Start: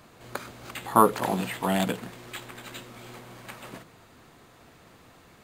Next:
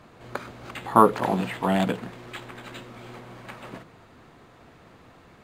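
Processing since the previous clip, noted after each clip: low-pass 2.5 kHz 6 dB/octave; trim +3 dB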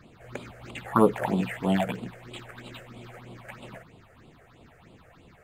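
phase shifter stages 6, 3.1 Hz, lowest notch 250–1700 Hz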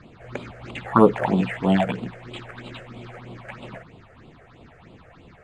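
distance through air 85 m; trim +5.5 dB

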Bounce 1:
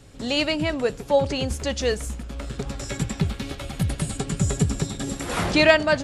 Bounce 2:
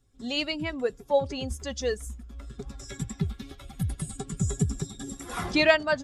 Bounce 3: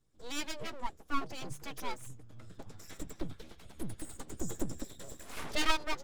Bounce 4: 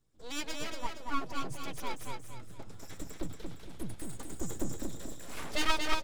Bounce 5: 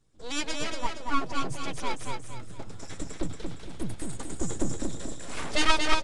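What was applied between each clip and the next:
expander on every frequency bin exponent 1.5; trim -3 dB
full-wave rectifier; trim -6.5 dB
feedback delay 232 ms, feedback 37%, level -4 dB
resampled via 22.05 kHz; trim +6.5 dB

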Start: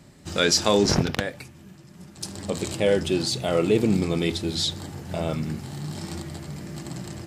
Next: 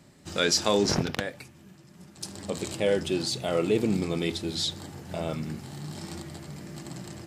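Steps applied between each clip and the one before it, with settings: bass shelf 92 Hz -7 dB; trim -3.5 dB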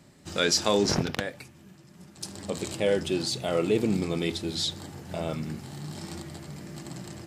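no audible change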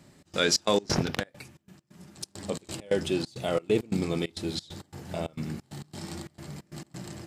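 trance gate "xx.xx.x.x" 134 bpm -24 dB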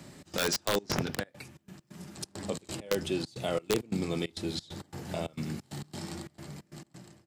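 fade out at the end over 1.50 s; integer overflow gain 14 dB; three bands compressed up and down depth 40%; trim -3 dB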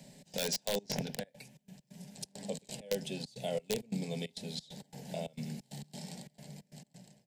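static phaser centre 330 Hz, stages 6; trim -3 dB

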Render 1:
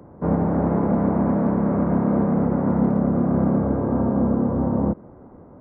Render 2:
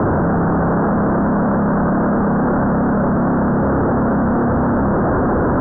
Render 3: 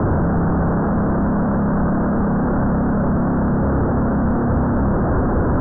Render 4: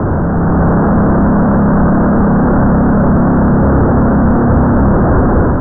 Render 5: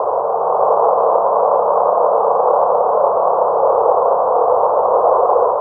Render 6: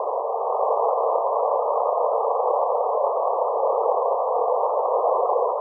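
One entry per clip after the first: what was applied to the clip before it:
one-bit comparator; steep low-pass 1.6 kHz 72 dB/octave; trim +5.5 dB
bass shelf 120 Hz +12 dB; trim -5 dB
level rider gain up to 4.5 dB; trim +4 dB
elliptic band-pass 470–1100 Hz, stop band 40 dB; trim +5.5 dB
spectral gate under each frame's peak -20 dB strong; trim -8 dB

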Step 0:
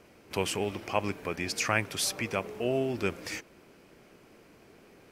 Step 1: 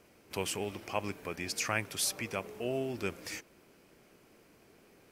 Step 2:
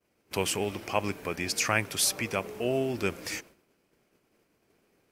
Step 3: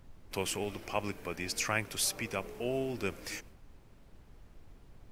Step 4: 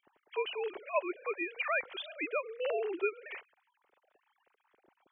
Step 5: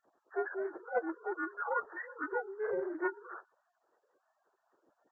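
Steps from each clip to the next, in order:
treble shelf 6.7 kHz +7.5 dB; trim -5.5 dB
expander -51 dBFS; trim +6 dB
added noise brown -47 dBFS; trim -5.5 dB
formants replaced by sine waves
frequency axis rescaled in octaves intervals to 77%; loudspeaker Doppler distortion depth 0.11 ms

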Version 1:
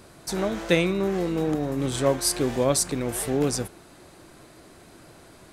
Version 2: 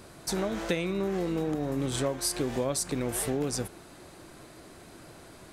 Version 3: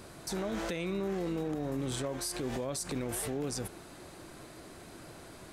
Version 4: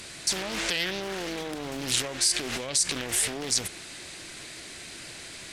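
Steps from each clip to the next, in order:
compression 6:1, threshold -26 dBFS, peak gain reduction 11 dB
peak limiter -26.5 dBFS, peak gain reduction 10 dB
high-order bell 4.1 kHz +15.5 dB 2.8 oct; loudspeaker Doppler distortion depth 0.62 ms

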